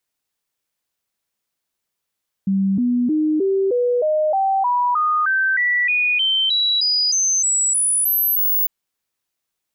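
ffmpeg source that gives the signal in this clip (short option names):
-f lavfi -i "aevalsrc='0.178*clip(min(mod(t,0.31),0.31-mod(t,0.31))/0.005,0,1)*sin(2*PI*194*pow(2,floor(t/0.31)/3)*mod(t,0.31))':d=6.2:s=44100"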